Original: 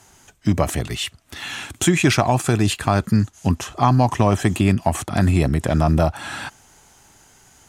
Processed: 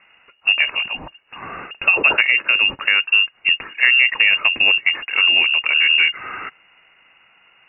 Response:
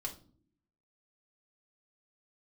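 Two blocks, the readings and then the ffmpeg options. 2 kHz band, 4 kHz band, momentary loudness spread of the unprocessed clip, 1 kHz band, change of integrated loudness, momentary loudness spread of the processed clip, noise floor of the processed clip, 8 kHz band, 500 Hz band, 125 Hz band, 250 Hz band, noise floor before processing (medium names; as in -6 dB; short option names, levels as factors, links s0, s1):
+15.0 dB, +13.0 dB, 13 LU, -8.0 dB, +5.5 dB, 17 LU, -56 dBFS, under -40 dB, -12.0 dB, under -30 dB, under -20 dB, -53 dBFS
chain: -af "lowpass=f=2500:t=q:w=0.5098,lowpass=f=2500:t=q:w=0.6013,lowpass=f=2500:t=q:w=0.9,lowpass=f=2500:t=q:w=2.563,afreqshift=-2900,volume=1.19"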